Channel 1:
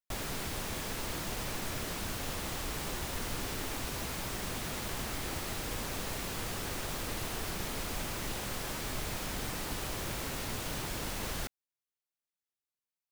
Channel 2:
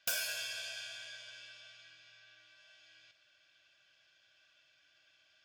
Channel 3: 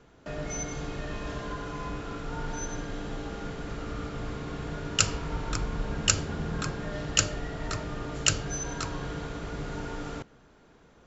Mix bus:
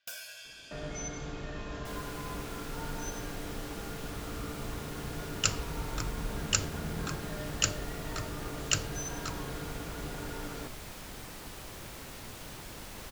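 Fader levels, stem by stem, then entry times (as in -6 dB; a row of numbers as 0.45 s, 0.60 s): -7.5 dB, -8.0 dB, -4.5 dB; 1.75 s, 0.00 s, 0.45 s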